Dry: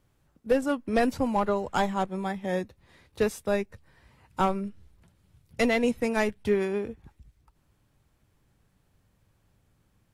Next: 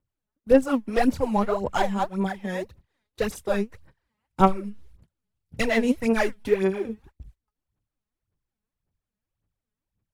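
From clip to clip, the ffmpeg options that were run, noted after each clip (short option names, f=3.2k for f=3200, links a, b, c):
-af "aphaser=in_gain=1:out_gain=1:delay=4.8:decay=0.73:speed=1.8:type=sinusoidal,agate=range=-21dB:threshold=-46dB:ratio=16:detection=peak,volume=-1.5dB"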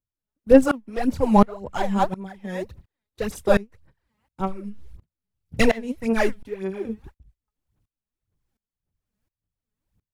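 -af "lowshelf=f=370:g=4,aeval=exprs='val(0)*pow(10,-24*if(lt(mod(-1.4*n/s,1),2*abs(-1.4)/1000),1-mod(-1.4*n/s,1)/(2*abs(-1.4)/1000),(mod(-1.4*n/s,1)-2*abs(-1.4)/1000)/(1-2*abs(-1.4)/1000))/20)':c=same,volume=8dB"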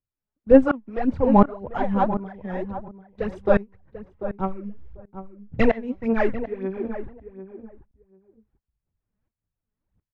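-filter_complex "[0:a]lowpass=1.9k,asplit=2[a][b];[b]adelay=742,lowpass=f=1.1k:p=1,volume=-10.5dB,asplit=2[c][d];[d]adelay=742,lowpass=f=1.1k:p=1,volume=0.15[e];[c][e]amix=inputs=2:normalize=0[f];[a][f]amix=inputs=2:normalize=0"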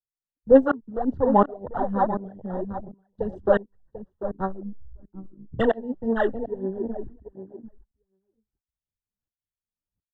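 -filter_complex "[0:a]afwtdn=0.0282,acrossover=split=250[a][b];[a]acompressor=threshold=-30dB:ratio=6[c];[c][b]amix=inputs=2:normalize=0,asuperstop=centerf=2300:order=12:qfactor=2.7"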